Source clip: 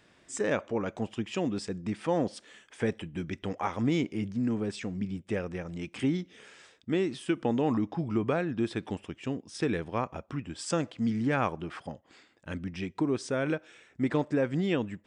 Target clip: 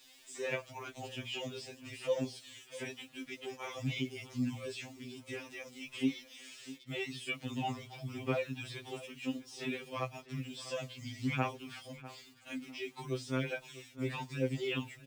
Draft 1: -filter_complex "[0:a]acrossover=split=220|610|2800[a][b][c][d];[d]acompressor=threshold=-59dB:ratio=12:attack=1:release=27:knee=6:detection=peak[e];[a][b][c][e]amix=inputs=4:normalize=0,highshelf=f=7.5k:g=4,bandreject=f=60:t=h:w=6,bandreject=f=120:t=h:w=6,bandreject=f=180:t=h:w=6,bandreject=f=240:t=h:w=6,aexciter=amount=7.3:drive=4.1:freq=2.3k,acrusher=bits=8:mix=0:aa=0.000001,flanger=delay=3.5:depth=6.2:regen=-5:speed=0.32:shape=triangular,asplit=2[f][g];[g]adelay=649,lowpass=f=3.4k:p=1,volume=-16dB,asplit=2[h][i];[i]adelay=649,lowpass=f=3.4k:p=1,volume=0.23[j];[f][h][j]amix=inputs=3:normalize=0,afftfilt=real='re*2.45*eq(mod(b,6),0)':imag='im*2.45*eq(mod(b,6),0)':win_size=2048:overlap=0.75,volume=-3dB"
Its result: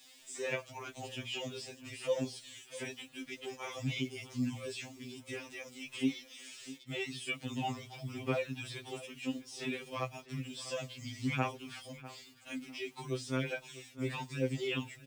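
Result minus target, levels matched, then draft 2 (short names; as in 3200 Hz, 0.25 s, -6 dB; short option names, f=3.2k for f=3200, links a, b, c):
8000 Hz band +3.0 dB
-filter_complex "[0:a]acrossover=split=220|610|2800[a][b][c][d];[d]acompressor=threshold=-59dB:ratio=12:attack=1:release=27:knee=6:detection=peak[e];[a][b][c][e]amix=inputs=4:normalize=0,highshelf=f=7.5k:g=-3,bandreject=f=60:t=h:w=6,bandreject=f=120:t=h:w=6,bandreject=f=180:t=h:w=6,bandreject=f=240:t=h:w=6,aexciter=amount=7.3:drive=4.1:freq=2.3k,acrusher=bits=8:mix=0:aa=0.000001,flanger=delay=3.5:depth=6.2:regen=-5:speed=0.32:shape=triangular,asplit=2[f][g];[g]adelay=649,lowpass=f=3.4k:p=1,volume=-16dB,asplit=2[h][i];[i]adelay=649,lowpass=f=3.4k:p=1,volume=0.23[j];[f][h][j]amix=inputs=3:normalize=0,afftfilt=real='re*2.45*eq(mod(b,6),0)':imag='im*2.45*eq(mod(b,6),0)':win_size=2048:overlap=0.75,volume=-3dB"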